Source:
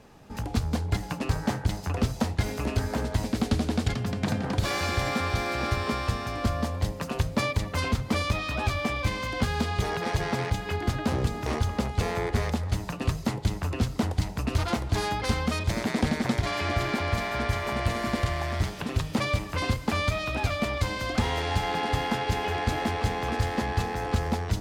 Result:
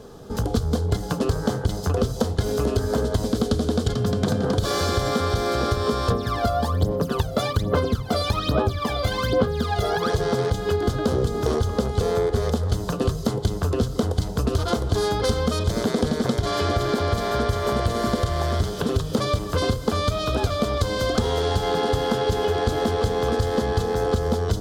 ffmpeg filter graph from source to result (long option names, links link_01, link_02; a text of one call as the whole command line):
ffmpeg -i in.wav -filter_complex "[0:a]asettb=1/sr,asplit=3[link_01][link_02][link_03];[link_01]atrim=end=6.104[link_04];[link_02]atrim=start=6.1:end=10.1,asetpts=PTS-STARTPTS,afade=type=in:duration=0.004:curve=qsin,afade=type=out:start_time=3.996:duration=0.004:curve=qsin,highpass=frequency=150:poles=1,equalizer=frequency=7100:width=0.93:gain=-7.5,aphaser=in_gain=1:out_gain=1:delay=1.5:decay=0.74:speed=1.2:type=sinusoidal[link_05];[link_03]atrim=start=10.096[link_06];[link_04][link_05]acrossfade=duration=0.004:curve1=hsin:curve2=qsin[link_07];[link_07][link_06]acrossfade=duration=0.004:curve1=qsin:curve2=hsin,superequalizer=7b=2.24:9b=0.631:12b=0.316,acompressor=threshold=-27dB:ratio=6,equalizer=frequency=1900:width_type=o:width=0.27:gain=-13.5,volume=9dB" out.wav